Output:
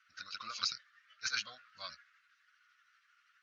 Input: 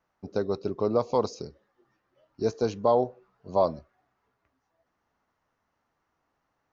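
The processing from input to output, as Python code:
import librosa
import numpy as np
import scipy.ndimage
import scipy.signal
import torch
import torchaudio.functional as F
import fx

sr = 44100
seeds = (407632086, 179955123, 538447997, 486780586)

p1 = fx.spec_quant(x, sr, step_db=15)
p2 = scipy.signal.sosfilt(scipy.signal.butter(2, 4800.0, 'lowpass', fs=sr, output='sos'), p1)
p3 = fx.over_compress(p2, sr, threshold_db=-29.0, ratio=-0.5)
p4 = p2 + F.gain(torch.from_numpy(p3), -2.0).numpy()
p5 = fx.stretch_grains(p4, sr, factor=0.51, grain_ms=160.0)
p6 = scipy.signal.sosfilt(scipy.signal.ellip(4, 1.0, 40, 1400.0, 'highpass', fs=sr, output='sos'), p5)
y = F.gain(torch.from_numpy(p6), 9.0).numpy()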